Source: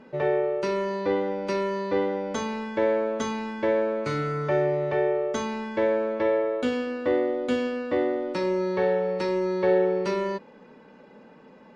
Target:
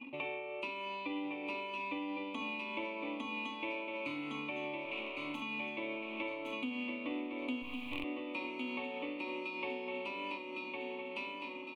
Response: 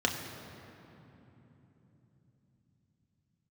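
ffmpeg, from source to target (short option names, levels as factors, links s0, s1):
-filter_complex "[0:a]asettb=1/sr,asplit=3[s0][s1][s2];[s0]atrim=end=4.854[s3];[s1]atrim=start=4.85:end=5.42,asetpts=PTS-STARTPTS,afade=t=in:d=0.004:c=qsin,afade=t=out:st=0.566:d=0.004:c=qsin,aeval=exprs='(tanh(28.2*val(0)+0.75)-tanh(0.75))/28.2':c=same[s4];[s2]atrim=start=5.416[s5];[s3][s4]acrossfade=d=0.004:c1=hsin:c2=qsin[s6];[s6][s5]acrossfade=d=0.004:c1=qsin:c2=hsin,aemphasis=mode=production:type=riaa,bandreject=f=60:t=h:w=6,bandreject=f=120:t=h:w=6,bandreject=f=180:t=h:w=6,bandreject=f=240:t=h:w=6,bandreject=f=300:t=h:w=6,bandreject=f=360:t=h:w=6,bandreject=f=420:t=h:w=6,bandreject=f=480:t=h:w=6,bandreject=f=540:t=h:w=6,aecho=1:1:1108|2216|3324|4432|5540:0.501|0.226|0.101|0.0457|0.0206,acrossover=split=1500[s7][s8];[s8]alimiter=level_in=1.41:limit=0.0631:level=0:latency=1:release=199,volume=0.708[s9];[s7][s9]amix=inputs=2:normalize=0,asettb=1/sr,asplit=3[s10][s11][s12];[s10]atrim=end=7.624[s13];[s11]atrim=start=7.62:end=8.04,asetpts=PTS-STARTPTS,afade=t=in:d=0.004:c=qsin,afade=t=out:st=0.416:d=0.004:c=qsin,acrusher=bits=4:dc=4:mix=0:aa=0.000001[s14];[s12]atrim=start=8.036[s15];[s13][s14]acrossfade=d=0.004:c1=hsin:c2=qsin[s16];[s16][s15]acrossfade=d=0.004:c1=qsin:c2=hsin,asettb=1/sr,asplit=3[s17][s18][s19];[s17]atrim=end=9.444[s20];[s18]atrim=start=9.44:end=9.89,asetpts=PTS-STARTPTS,afade=t=in:d=0.004:c=qsin,afade=t=out:st=0.446:d=0.004:c=qsin,aeval=exprs='val(0)+0.00501*sin(2*PI*5100*n/s)':c=same[s21];[s19]atrim=start=9.886[s22];[s20][s21]acrossfade=d=0.004:c1=hsin:c2=qsin[s23];[s23][s22]acrossfade=d=0.004:c1=qsin:c2=hsin,firequalizer=gain_entry='entry(110,0);entry(180,-14);entry(270,15);entry(390,-13);entry(1100,0);entry(1600,-29);entry(2400,12);entry(5200,-25);entry(9700,-17)':delay=0.05:min_phase=1,anlmdn=0.001,tremolo=f=3.2:d=0.32,acompressor=threshold=0.00501:ratio=3,volume=1.68"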